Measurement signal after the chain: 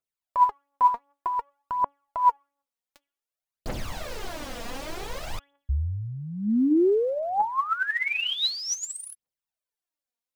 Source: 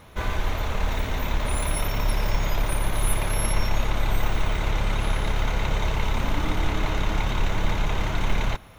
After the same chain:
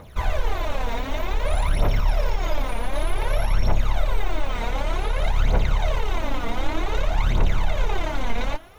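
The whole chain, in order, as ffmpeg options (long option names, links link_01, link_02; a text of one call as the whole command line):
ffmpeg -i in.wav -filter_complex "[0:a]equalizer=frequency=620:width_type=o:width=1:gain=6,bandreject=frequency=281.8:width_type=h:width=4,bandreject=frequency=563.6:width_type=h:width=4,bandreject=frequency=845.4:width_type=h:width=4,bandreject=frequency=1127.2:width_type=h:width=4,bandreject=frequency=1409:width_type=h:width=4,bandreject=frequency=1690.8:width_type=h:width=4,bandreject=frequency=1972.6:width_type=h:width=4,bandreject=frequency=2254.4:width_type=h:width=4,bandreject=frequency=2536.2:width_type=h:width=4,bandreject=frequency=2818:width_type=h:width=4,bandreject=frequency=3099.8:width_type=h:width=4,bandreject=frequency=3381.6:width_type=h:width=4,acrossover=split=6300[link_01][link_02];[link_02]acompressor=threshold=-49dB:ratio=4:attack=1:release=60[link_03];[link_01][link_03]amix=inputs=2:normalize=0,alimiter=limit=-14.5dB:level=0:latency=1:release=105,aphaser=in_gain=1:out_gain=1:delay=4.4:decay=0.69:speed=0.54:type=triangular,volume=-3dB" out.wav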